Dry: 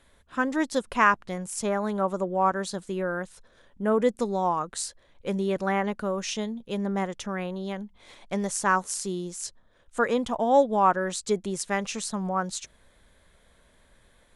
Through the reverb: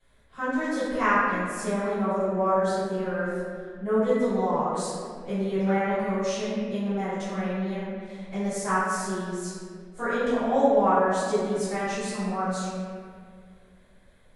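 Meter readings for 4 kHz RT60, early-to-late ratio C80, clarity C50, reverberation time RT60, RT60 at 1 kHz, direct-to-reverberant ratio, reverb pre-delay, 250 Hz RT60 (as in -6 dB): 1.3 s, -1.5 dB, -3.5 dB, 2.2 s, 1.9 s, -16.0 dB, 3 ms, 2.5 s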